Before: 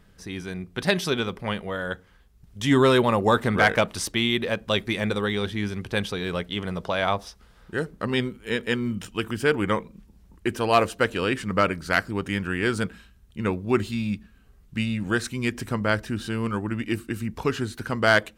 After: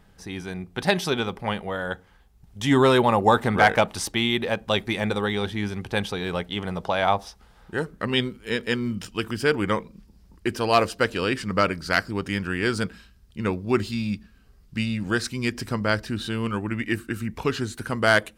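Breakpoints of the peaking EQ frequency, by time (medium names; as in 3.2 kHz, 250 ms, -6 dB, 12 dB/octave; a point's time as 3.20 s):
peaking EQ +8.5 dB 0.35 oct
7.77 s 810 Hz
8.31 s 4.9 kHz
16.00 s 4.9 kHz
17.21 s 1.3 kHz
17.82 s 10 kHz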